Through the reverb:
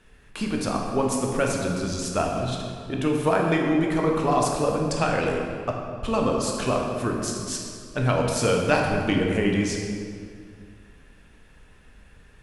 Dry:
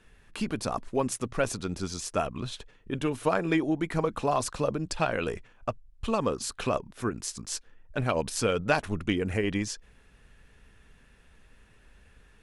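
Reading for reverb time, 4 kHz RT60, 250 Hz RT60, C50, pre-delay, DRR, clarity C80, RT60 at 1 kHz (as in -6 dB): 2.2 s, 1.5 s, 2.5 s, 2.0 dB, 13 ms, 0.0 dB, 3.5 dB, 2.1 s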